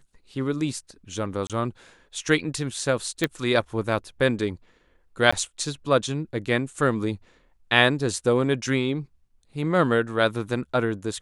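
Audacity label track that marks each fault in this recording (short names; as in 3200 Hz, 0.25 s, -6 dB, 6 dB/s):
1.470000	1.500000	gap 27 ms
3.240000	3.240000	pop -9 dBFS
5.310000	5.330000	gap 15 ms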